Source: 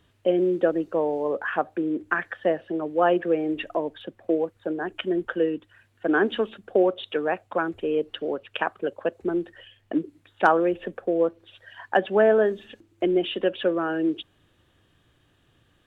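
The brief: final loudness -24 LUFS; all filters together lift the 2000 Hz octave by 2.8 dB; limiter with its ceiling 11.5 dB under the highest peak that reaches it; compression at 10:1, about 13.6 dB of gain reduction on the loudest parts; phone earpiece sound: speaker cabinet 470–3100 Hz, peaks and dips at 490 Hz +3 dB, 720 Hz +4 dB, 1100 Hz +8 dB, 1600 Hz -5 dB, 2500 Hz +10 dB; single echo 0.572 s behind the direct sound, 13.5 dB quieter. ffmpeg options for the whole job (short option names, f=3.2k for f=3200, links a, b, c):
-af "equalizer=f=2k:t=o:g=5.5,acompressor=threshold=-27dB:ratio=10,alimiter=limit=-23.5dB:level=0:latency=1,highpass=470,equalizer=f=490:t=q:w=4:g=3,equalizer=f=720:t=q:w=4:g=4,equalizer=f=1.1k:t=q:w=4:g=8,equalizer=f=1.6k:t=q:w=4:g=-5,equalizer=f=2.5k:t=q:w=4:g=10,lowpass=f=3.1k:w=0.5412,lowpass=f=3.1k:w=1.3066,aecho=1:1:572:0.211,volume=11.5dB"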